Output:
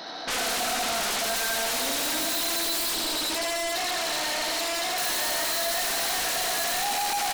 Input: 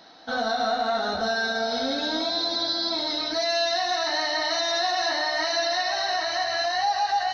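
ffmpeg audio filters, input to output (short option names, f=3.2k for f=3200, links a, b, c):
-filter_complex "[0:a]aecho=1:1:83|166|249|332|415|498|581|664:0.631|0.366|0.212|0.123|0.0714|0.0414|0.024|0.0139,asoftclip=type=hard:threshold=-24.5dB,asettb=1/sr,asplit=3[a][b][c];[a]atrim=end=2.924[d];[b]atrim=start=2.92:end=4.98,asetpts=PTS-STARTPTS,afade=t=in:d=0.004:c=qsin,afade=t=out:st=2.056:d=0.004:c=qsin,acrossover=split=390[e][f];[f]acompressor=threshold=-31dB:ratio=10[g];[e][g]amix=inputs=2:normalize=0[h];[c]atrim=start=4.976[i];[d][h]acrossfade=d=0.004:c1=hsin:c2=qsin[j];[j][i]acrossfade=d=0.004:c1=qsin:c2=hsin,aeval=exprs='0.0841*sin(PI/2*3.98*val(0)/0.0841)':c=same,equalizer=f=92:t=o:w=1.6:g=-12.5,volume=-3.5dB"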